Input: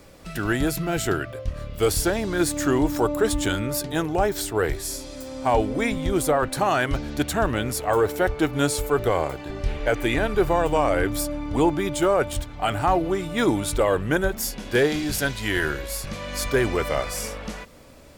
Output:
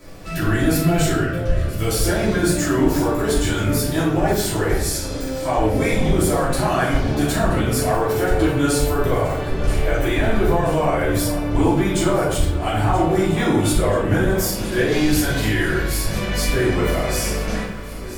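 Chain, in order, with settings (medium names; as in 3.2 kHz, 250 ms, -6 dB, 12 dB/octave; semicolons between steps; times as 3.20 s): peak limiter -18.5 dBFS, peak gain reduction 8 dB; echo whose repeats swap between lows and highs 489 ms, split 1.2 kHz, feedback 79%, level -13 dB; reverberation RT60 0.70 s, pre-delay 3 ms, DRR -10 dB; trim -2.5 dB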